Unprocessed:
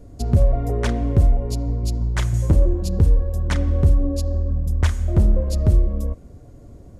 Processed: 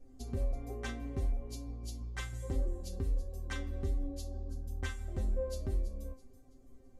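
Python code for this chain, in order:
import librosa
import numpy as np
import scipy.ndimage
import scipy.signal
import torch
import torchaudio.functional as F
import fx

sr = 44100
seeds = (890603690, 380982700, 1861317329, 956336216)

p1 = fx.resonator_bank(x, sr, root=60, chord='fifth', decay_s=0.22)
p2 = p1 + fx.echo_wet_highpass(p1, sr, ms=331, feedback_pct=40, hz=4600.0, wet_db=-12.5, dry=0)
y = p2 * 10.0 ** (1.5 / 20.0)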